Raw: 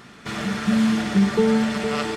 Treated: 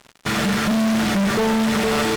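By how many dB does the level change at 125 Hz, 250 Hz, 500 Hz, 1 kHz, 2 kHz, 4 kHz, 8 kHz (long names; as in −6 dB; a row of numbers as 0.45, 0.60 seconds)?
+1.0, +0.5, +1.5, +5.5, +5.0, +6.0, +8.0 decibels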